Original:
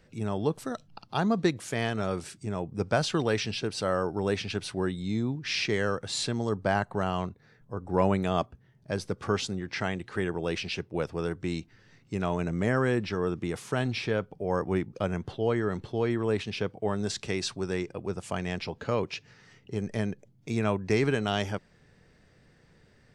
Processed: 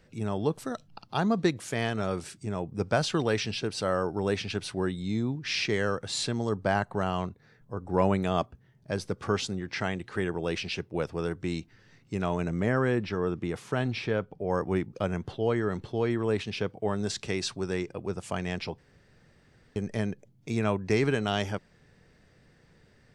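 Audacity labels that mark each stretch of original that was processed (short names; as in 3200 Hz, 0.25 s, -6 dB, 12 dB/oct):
12.600000	14.500000	high shelf 5200 Hz -8 dB
18.780000	19.760000	room tone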